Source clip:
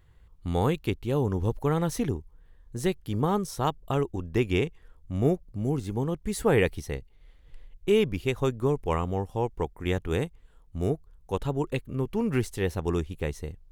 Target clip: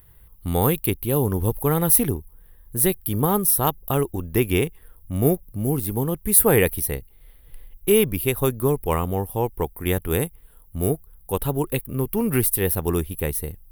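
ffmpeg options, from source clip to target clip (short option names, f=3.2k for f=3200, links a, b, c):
-af "aexciter=amount=13.1:drive=8.4:freq=10k,volume=4.5dB"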